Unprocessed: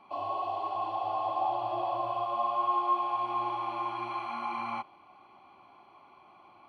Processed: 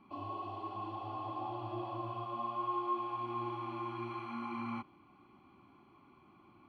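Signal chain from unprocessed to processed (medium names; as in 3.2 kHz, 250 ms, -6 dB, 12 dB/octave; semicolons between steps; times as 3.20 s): FFT filter 290 Hz 0 dB, 680 Hz -21 dB, 1.3 kHz -11 dB, 4.6 kHz -15 dB; trim +6 dB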